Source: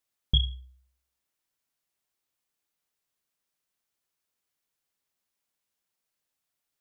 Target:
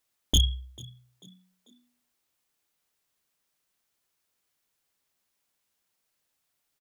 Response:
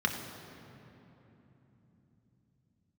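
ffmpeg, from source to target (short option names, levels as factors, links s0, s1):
-filter_complex "[0:a]aeval=exprs='0.106*(abs(mod(val(0)/0.106+3,4)-2)-1)':c=same,asplit=4[s0][s1][s2][s3];[s1]adelay=442,afreqshift=60,volume=0.0708[s4];[s2]adelay=884,afreqshift=120,volume=0.0275[s5];[s3]adelay=1326,afreqshift=180,volume=0.0107[s6];[s0][s4][s5][s6]amix=inputs=4:normalize=0,volume=1.88"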